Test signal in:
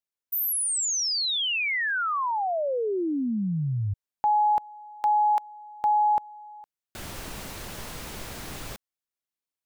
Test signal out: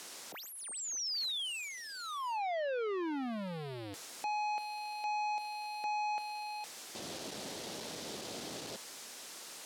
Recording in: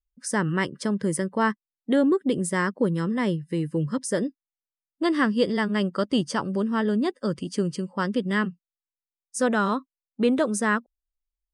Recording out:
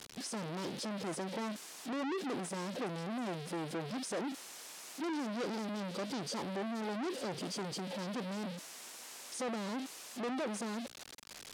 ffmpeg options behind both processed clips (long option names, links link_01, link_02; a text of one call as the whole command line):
ffmpeg -i in.wav -filter_complex "[0:a]aeval=exprs='val(0)+0.5*0.0251*sgn(val(0))':channel_layout=same,aemphasis=mode=production:type=75kf,acrossover=split=3600[link_01][link_02];[link_02]acompressor=threshold=-28dB:ratio=4:attack=1:release=60[link_03];[link_01][link_03]amix=inputs=2:normalize=0,asuperstop=centerf=1800:order=4:qfactor=0.51,aeval=exprs='(tanh(56.2*val(0)+0.05)-tanh(0.05))/56.2':channel_layout=same,highpass=250,lowpass=6300,volume=1dB" out.wav